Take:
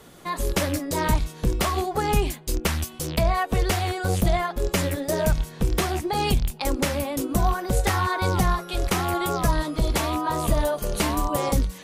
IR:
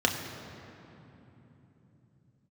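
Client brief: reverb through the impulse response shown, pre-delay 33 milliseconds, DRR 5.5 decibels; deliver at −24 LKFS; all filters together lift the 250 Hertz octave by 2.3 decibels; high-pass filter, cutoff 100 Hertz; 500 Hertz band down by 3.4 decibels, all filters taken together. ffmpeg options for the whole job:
-filter_complex "[0:a]highpass=100,equalizer=frequency=250:width_type=o:gain=5.5,equalizer=frequency=500:width_type=o:gain=-6.5,asplit=2[link_01][link_02];[1:a]atrim=start_sample=2205,adelay=33[link_03];[link_02][link_03]afir=irnorm=-1:irlink=0,volume=-17.5dB[link_04];[link_01][link_04]amix=inputs=2:normalize=0,volume=0.5dB"

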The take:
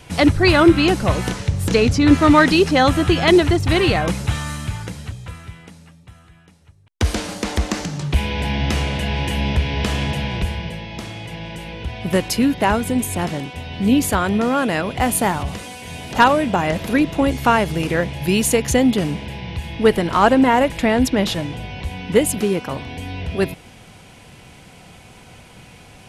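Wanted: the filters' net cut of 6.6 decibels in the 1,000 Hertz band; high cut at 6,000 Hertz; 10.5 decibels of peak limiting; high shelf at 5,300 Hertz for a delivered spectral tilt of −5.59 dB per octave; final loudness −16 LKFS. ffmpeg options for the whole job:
ffmpeg -i in.wav -af "lowpass=6000,equalizer=frequency=1000:width_type=o:gain=-8.5,highshelf=frequency=5300:gain=-8.5,volume=8dB,alimiter=limit=-5dB:level=0:latency=1" out.wav

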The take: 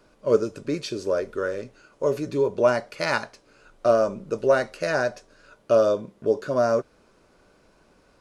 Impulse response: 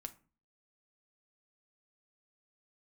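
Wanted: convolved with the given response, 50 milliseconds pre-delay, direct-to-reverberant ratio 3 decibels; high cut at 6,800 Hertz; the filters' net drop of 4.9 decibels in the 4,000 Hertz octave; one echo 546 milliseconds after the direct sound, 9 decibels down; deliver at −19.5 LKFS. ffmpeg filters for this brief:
-filter_complex "[0:a]lowpass=6800,equalizer=frequency=4000:width_type=o:gain=-5.5,aecho=1:1:546:0.355,asplit=2[link_01][link_02];[1:a]atrim=start_sample=2205,adelay=50[link_03];[link_02][link_03]afir=irnorm=-1:irlink=0,volume=1.5dB[link_04];[link_01][link_04]amix=inputs=2:normalize=0,volume=3.5dB"

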